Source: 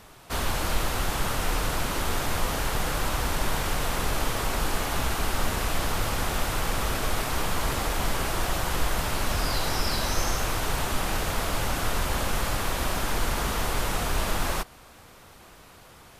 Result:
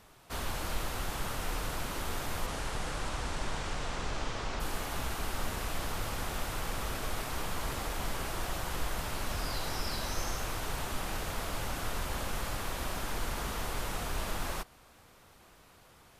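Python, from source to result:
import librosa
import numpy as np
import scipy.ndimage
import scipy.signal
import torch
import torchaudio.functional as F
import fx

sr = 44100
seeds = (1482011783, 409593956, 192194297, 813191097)

y = fx.lowpass(x, sr, hz=fx.line((2.46, 11000.0), (4.59, 6500.0)), slope=24, at=(2.46, 4.59), fade=0.02)
y = y * librosa.db_to_amplitude(-8.5)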